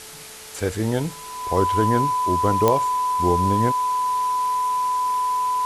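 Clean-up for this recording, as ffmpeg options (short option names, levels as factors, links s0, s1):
-af "adeclick=t=4,bandreject=f=435.7:t=h:w=4,bandreject=f=871.4:t=h:w=4,bandreject=f=1307.1:t=h:w=4,bandreject=f=1000:w=30,afwtdn=0.013"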